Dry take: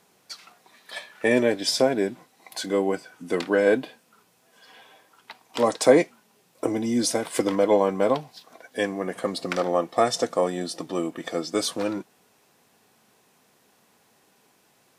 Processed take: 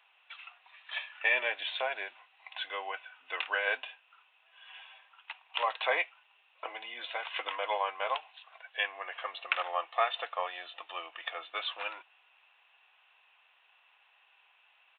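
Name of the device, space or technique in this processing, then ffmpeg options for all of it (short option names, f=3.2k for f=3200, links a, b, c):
musical greeting card: -filter_complex "[0:a]asettb=1/sr,asplit=3[a][b][c];[a]atrim=end=1.154[d];[b]atrim=start=1.15:end=1.68,asetpts=PTS-STARTPTS,afade=t=in:d=0.004:c=qsin,afade=t=out:st=0.526:d=0.004:c=qsin,equalizer=f=160:t=o:w=0.7:g=14.5[e];[c]atrim=start=1.676[f];[d][e]acrossfade=d=0.004:c1=hsin:c2=qsin[g];[g][f]acrossfade=d=0.004:c1=qsin:c2=hsin,aresample=8000,aresample=44100,highpass=f=820:w=0.5412,highpass=f=820:w=1.3066,equalizer=f=2.7k:t=o:w=0.32:g=12,volume=-2.5dB"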